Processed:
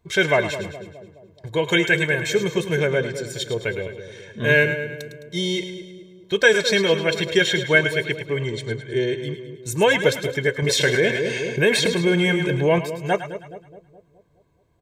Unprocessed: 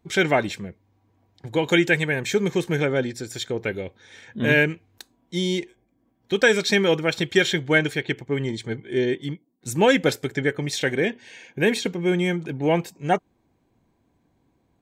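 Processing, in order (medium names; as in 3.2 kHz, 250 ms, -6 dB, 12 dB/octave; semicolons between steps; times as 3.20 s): band-stop 520 Hz, Q 12; comb 1.9 ms, depth 62%; two-band feedback delay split 650 Hz, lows 210 ms, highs 106 ms, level -10 dB; 10.62–12.79 s: level flattener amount 50%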